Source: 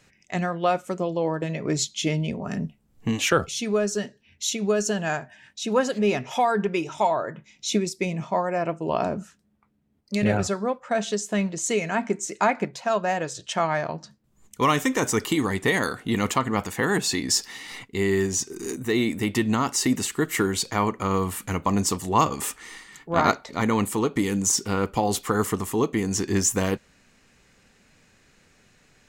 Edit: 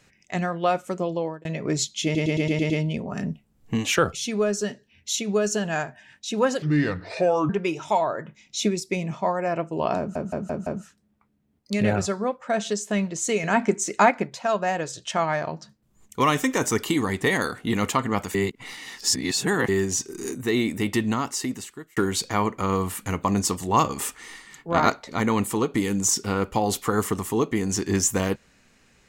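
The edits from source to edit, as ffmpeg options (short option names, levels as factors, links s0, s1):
-filter_complex "[0:a]asplit=19[s0][s1][s2][s3][s4][s5][s6][s7][s8][s9][s10][s11][s12][s13][s14][s15][s16][s17][s18];[s0]atrim=end=1.45,asetpts=PTS-STARTPTS,afade=t=out:st=1.15:d=0.3[s19];[s1]atrim=start=1.45:end=2.152,asetpts=PTS-STARTPTS,afade=t=in:d=0.004:c=hsin[s20];[s2]atrim=start=2.038:end=2.152[s21];[s3]atrim=start=2.038:end=2.152[s22];[s4]atrim=start=2.038:end=2.152[s23];[s5]atrim=start=2.038:end=2.152[s24];[s6]atrim=start=2.038:end=2.152[s25];[s7]atrim=start=2.038:end=5.964[s26];[s8]atrim=start=5.96:end=6.59,asetpts=PTS-STARTPTS,asetrate=31752,aresample=44100[s27];[s9]atrim=start=6.586:end=9.252[s28];[s10]atrim=start=9.078:end=9.252[s29];[s11]atrim=start=9.078:end=9.252[s30];[s12]atrim=start=9.078:end=9.252[s31];[s13]atrim=start=9.078:end=11.852[s32];[s14]atrim=start=11.848:end=12.522,asetpts=PTS-STARTPTS,volume=1.58[s33];[s15]atrim=start=12.518:end=16.762[s34];[s16]atrim=start=16.758:end=18.102,asetpts=PTS-STARTPTS,areverse[s35];[s17]atrim=start=18.098:end=20.38,asetpts=PTS-STARTPTS,afade=t=out:st=1.262:d=1.02[s36];[s18]atrim=start=20.38,asetpts=PTS-STARTPTS,afade=t=in:d=0.004:c=hsin[s37];[s19][s20]concat=n=2:v=0:a=1[s38];[s38][s21]acrossfade=d=0.004:c1=hsin:c2=hsin[s39];[s39][s22]acrossfade=d=0.004:c1=hsin:c2=hsin[s40];[s40][s23]acrossfade=d=0.004:c1=hsin:c2=hsin[s41];[s41][s24]acrossfade=d=0.004:c1=hsin:c2=hsin[s42];[s42][s25]acrossfade=d=0.004:c1=hsin:c2=hsin[s43];[s43][s26]acrossfade=d=0.004:c1=hsin:c2=hsin[s44];[s44][s27]acrossfade=d=0.004:c1=hsin:c2=hsin[s45];[s45][s28]acrossfade=d=0.004:c1=hsin:c2=hsin[s46];[s46][s29]acrossfade=d=0.004:c1=hsin:c2=hsin[s47];[s47][s30]acrossfade=d=0.004:c1=hsin:c2=hsin[s48];[s48][s31]acrossfade=d=0.004:c1=hsin:c2=hsin[s49];[s49][s32]acrossfade=d=0.004:c1=hsin:c2=hsin[s50];[s50][s33]acrossfade=d=0.004:c1=hsin:c2=hsin[s51];[s51][s34]acrossfade=d=0.004:c1=hsin:c2=hsin[s52];[s52][s35]acrossfade=d=0.004:c1=hsin:c2=hsin[s53];[s36][s37]concat=n=2:v=0:a=1[s54];[s53][s54]acrossfade=d=0.004:c1=hsin:c2=hsin"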